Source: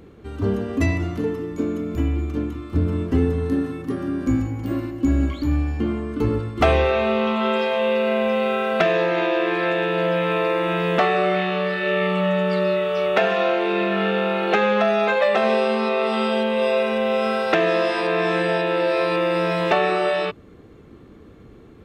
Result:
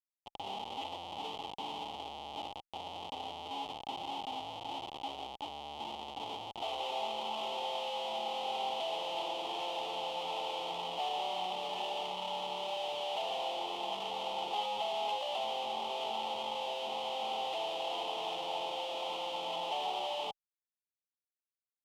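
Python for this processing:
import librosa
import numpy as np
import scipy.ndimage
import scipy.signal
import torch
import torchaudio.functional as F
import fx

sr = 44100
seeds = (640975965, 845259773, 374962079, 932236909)

y = fx.schmitt(x, sr, flips_db=-26.0)
y = fx.cheby_harmonics(y, sr, harmonics=(3,), levels_db=(-15,), full_scale_db=-15.0)
y = fx.double_bandpass(y, sr, hz=1600.0, octaves=1.9)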